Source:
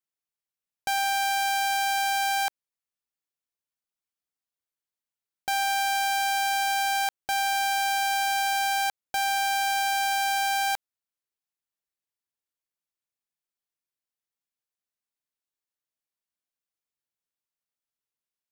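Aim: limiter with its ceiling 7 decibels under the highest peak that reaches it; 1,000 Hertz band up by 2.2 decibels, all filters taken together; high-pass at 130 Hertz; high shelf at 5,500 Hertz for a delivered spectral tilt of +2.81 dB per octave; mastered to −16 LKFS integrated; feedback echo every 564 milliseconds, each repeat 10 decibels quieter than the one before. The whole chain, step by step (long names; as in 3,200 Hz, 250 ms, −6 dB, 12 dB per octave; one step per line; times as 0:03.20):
high-pass filter 130 Hz
parametric band 1,000 Hz +3 dB
high-shelf EQ 5,500 Hz +8 dB
brickwall limiter −18 dBFS
repeating echo 564 ms, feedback 32%, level −10 dB
level +12 dB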